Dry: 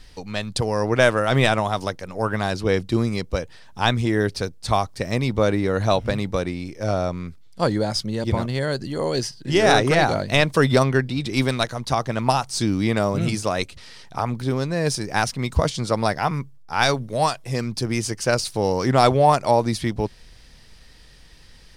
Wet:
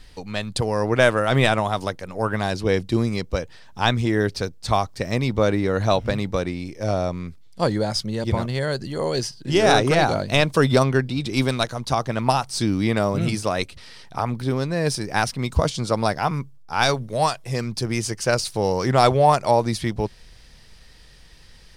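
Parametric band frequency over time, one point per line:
parametric band −4 dB 0.32 octaves
5,600 Hz
from 0:02.40 1,300 Hz
from 0:03.11 9,800 Hz
from 0:06.58 1,400 Hz
from 0:07.67 280 Hz
from 0:09.21 1,900 Hz
from 0:12.07 6,800 Hz
from 0:15.38 1,900 Hz
from 0:16.89 270 Hz

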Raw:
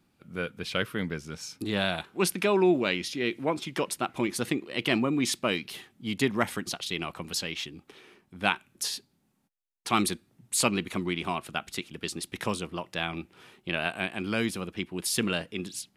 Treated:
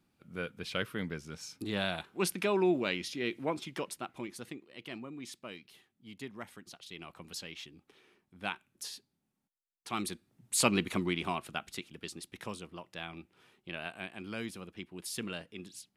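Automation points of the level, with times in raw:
0:03.55 −5.5 dB
0:04.73 −18 dB
0:06.64 −18 dB
0:07.26 −11 dB
0:09.95 −11 dB
0:10.80 0 dB
0:12.38 −11 dB

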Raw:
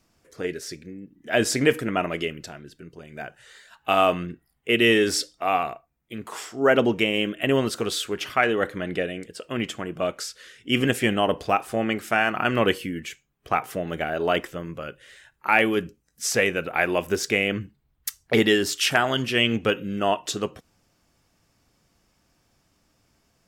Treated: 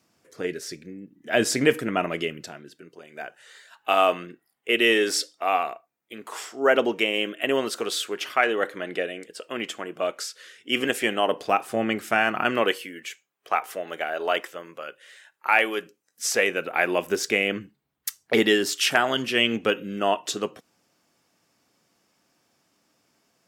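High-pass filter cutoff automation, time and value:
0:02.40 140 Hz
0:02.96 340 Hz
0:11.24 340 Hz
0:11.82 130 Hz
0:12.35 130 Hz
0:12.76 500 Hz
0:15.82 500 Hz
0:16.93 210 Hz

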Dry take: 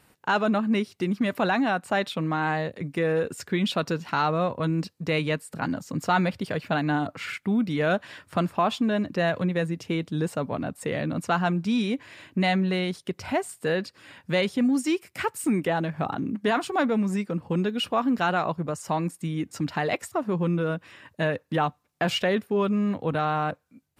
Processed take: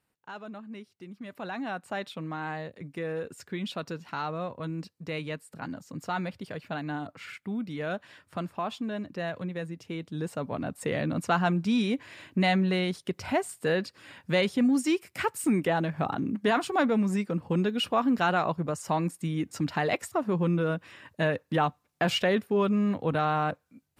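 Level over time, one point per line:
0:01.13 −18.5 dB
0:01.73 −9 dB
0:09.90 −9 dB
0:10.83 −1 dB

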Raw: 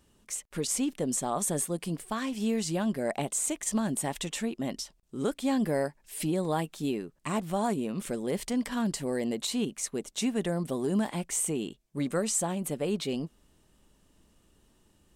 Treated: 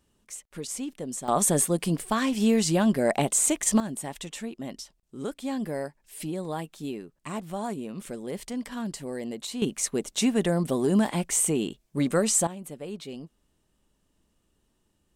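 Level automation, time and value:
−4.5 dB
from 0:01.28 +7 dB
from 0:03.80 −3.5 dB
from 0:09.62 +5.5 dB
from 0:12.47 −7 dB

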